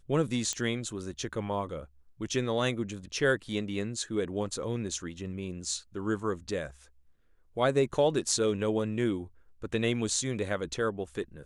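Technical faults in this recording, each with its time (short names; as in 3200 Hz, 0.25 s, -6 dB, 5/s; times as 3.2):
0.53 pop -18 dBFS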